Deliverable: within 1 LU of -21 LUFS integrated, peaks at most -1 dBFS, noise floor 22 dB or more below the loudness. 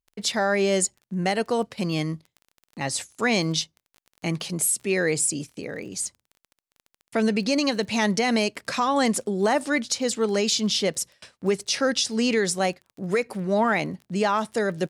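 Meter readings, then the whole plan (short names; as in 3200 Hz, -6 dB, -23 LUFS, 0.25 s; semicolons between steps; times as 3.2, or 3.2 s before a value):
ticks 22/s; loudness -24.5 LUFS; peak -12.0 dBFS; loudness target -21.0 LUFS
-> de-click; gain +3.5 dB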